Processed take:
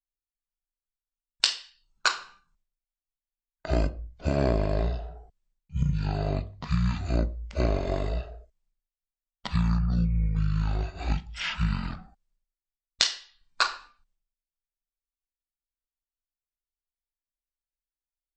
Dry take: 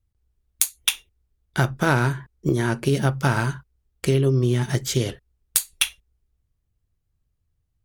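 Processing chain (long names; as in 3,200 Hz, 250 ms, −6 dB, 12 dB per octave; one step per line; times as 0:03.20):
noise gate with hold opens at −51 dBFS
wrong playback speed 78 rpm record played at 33 rpm
level −5.5 dB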